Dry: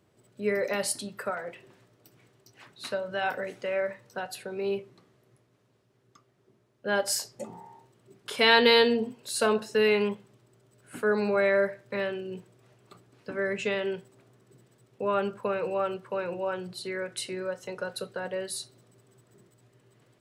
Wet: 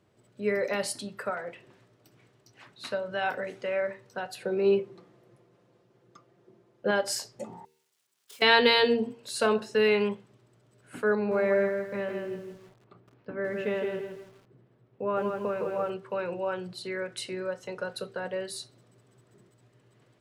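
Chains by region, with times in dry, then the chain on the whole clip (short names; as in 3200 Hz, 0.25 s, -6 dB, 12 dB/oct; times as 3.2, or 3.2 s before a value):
4.41–6.91 bell 470 Hz +7.5 dB 2.4 oct + comb 5.8 ms, depth 49%
7.65–8.42 switching spikes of -17.5 dBFS + gate -23 dBFS, range -40 dB + compressor, threshold -40 dBFS
11.15–15.9 tape spacing loss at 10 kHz 30 dB + lo-fi delay 0.162 s, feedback 35%, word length 9-bit, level -5 dB
whole clip: high shelf 9700 Hz -10.5 dB; de-hum 77.43 Hz, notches 6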